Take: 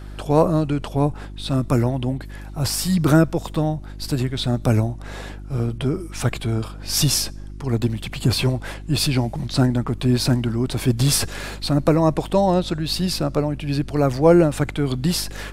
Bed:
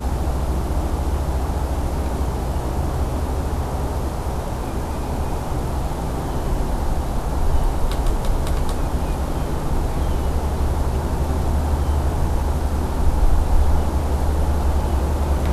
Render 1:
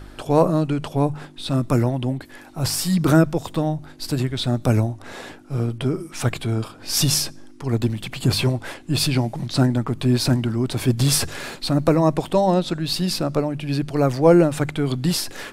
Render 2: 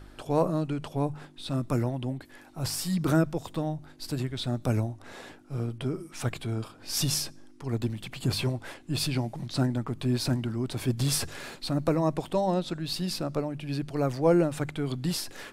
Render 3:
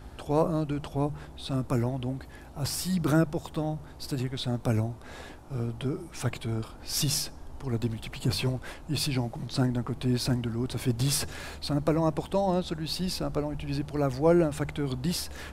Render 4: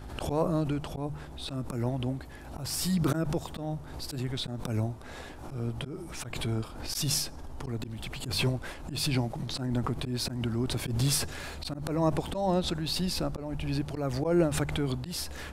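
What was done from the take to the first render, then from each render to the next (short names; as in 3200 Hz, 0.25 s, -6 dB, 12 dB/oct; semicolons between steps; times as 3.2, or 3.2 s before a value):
de-hum 50 Hz, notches 4
gain -8.5 dB
add bed -25.5 dB
auto swell 0.171 s; backwards sustainer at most 53 dB/s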